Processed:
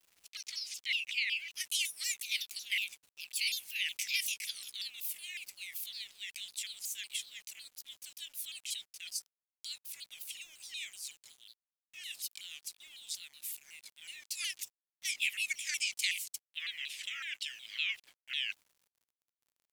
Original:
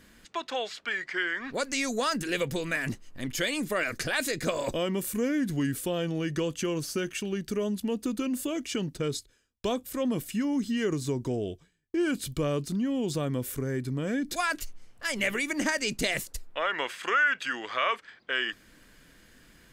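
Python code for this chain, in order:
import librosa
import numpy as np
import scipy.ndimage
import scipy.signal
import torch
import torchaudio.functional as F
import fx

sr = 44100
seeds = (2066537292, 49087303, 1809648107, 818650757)

y = fx.pitch_glide(x, sr, semitones=6.5, runs='ending unshifted')
y = scipy.signal.sosfilt(scipy.signal.ellip(4, 1.0, 70, 2400.0, 'highpass', fs=sr, output='sos'), y)
y = np.where(np.abs(y) >= 10.0 ** (-56.0 / 20.0), y, 0.0)
y = fx.vibrato_shape(y, sr, shape='saw_down', rate_hz=5.4, depth_cents=250.0)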